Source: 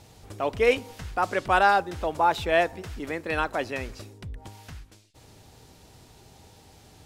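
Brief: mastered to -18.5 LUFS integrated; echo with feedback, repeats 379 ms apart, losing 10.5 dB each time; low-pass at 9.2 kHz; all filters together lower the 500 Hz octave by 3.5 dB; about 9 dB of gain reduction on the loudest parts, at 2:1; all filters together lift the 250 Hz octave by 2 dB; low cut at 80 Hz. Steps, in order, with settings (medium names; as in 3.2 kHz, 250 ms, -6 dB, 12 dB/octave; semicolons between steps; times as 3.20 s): high-pass 80 Hz; low-pass 9.2 kHz; peaking EQ 250 Hz +5 dB; peaking EQ 500 Hz -5.5 dB; compression 2:1, threshold -34 dBFS; feedback delay 379 ms, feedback 30%, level -10.5 dB; trim +16 dB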